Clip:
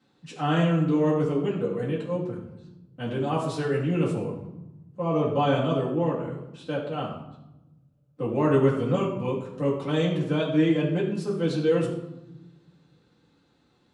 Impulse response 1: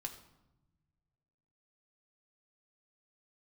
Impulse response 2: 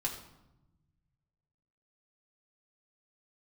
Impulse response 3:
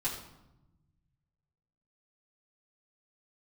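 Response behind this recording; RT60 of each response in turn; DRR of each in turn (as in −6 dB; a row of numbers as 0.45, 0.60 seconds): 3; 1.0, 0.95, 0.95 seconds; 3.0, −1.5, −7.5 decibels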